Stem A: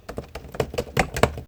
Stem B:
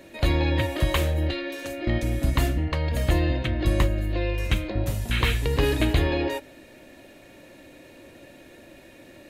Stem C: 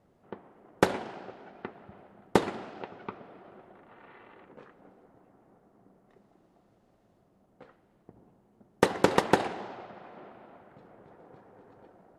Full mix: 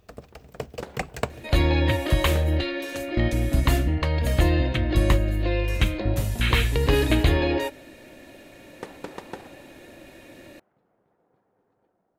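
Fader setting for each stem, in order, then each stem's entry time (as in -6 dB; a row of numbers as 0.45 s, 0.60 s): -9.0 dB, +2.0 dB, -15.0 dB; 0.00 s, 1.30 s, 0.00 s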